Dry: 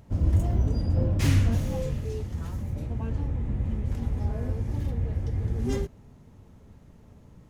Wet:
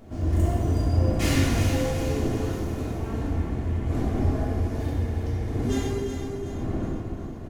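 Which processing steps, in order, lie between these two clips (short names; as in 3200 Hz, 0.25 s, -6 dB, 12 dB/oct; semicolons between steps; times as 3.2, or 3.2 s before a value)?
wind noise 150 Hz -32 dBFS; low shelf 170 Hz -11.5 dB; comb 2.8 ms, depth 34%; feedback echo 0.369 s, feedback 48%, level -8 dB; plate-style reverb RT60 1.8 s, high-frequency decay 0.85×, DRR -5 dB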